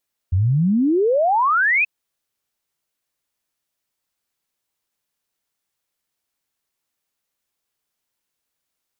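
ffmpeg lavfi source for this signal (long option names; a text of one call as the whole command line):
ffmpeg -f lavfi -i "aevalsrc='0.2*clip(min(t,1.53-t)/0.01,0,1)*sin(2*PI*85*1.53/log(2600/85)*(exp(log(2600/85)*t/1.53)-1))':duration=1.53:sample_rate=44100" out.wav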